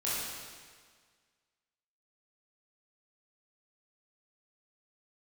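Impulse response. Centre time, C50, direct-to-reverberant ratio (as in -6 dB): 0.119 s, -3.0 dB, -9.5 dB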